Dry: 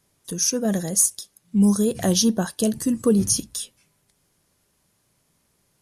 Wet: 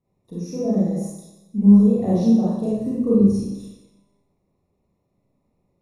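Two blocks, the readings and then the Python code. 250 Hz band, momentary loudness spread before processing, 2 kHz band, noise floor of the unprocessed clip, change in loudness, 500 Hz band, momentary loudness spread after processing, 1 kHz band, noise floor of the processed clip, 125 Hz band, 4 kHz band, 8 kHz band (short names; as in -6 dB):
+5.0 dB, 13 LU, under -15 dB, -68 dBFS, +3.0 dB, +1.5 dB, 19 LU, -1.0 dB, -71 dBFS, +4.5 dB, under -15 dB, under -20 dB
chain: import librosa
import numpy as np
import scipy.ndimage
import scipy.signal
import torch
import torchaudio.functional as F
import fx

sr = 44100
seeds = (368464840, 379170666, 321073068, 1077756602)

y = np.convolve(x, np.full(28, 1.0 / 28))[:len(x)]
y = fx.rev_schroeder(y, sr, rt60_s=0.91, comb_ms=31, drr_db=-8.0)
y = y * librosa.db_to_amplitude(-6.0)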